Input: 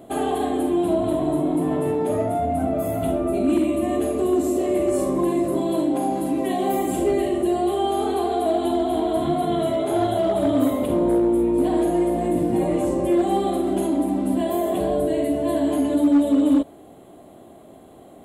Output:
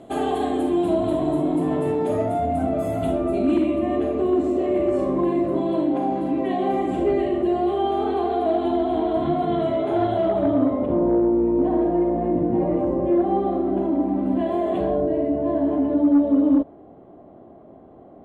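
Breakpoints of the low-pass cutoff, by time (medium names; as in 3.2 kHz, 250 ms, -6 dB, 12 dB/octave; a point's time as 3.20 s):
3.17 s 7.1 kHz
3.86 s 2.7 kHz
10.23 s 2.7 kHz
10.67 s 1.3 kHz
13.89 s 1.3 kHz
14.77 s 2.9 kHz
15.08 s 1.2 kHz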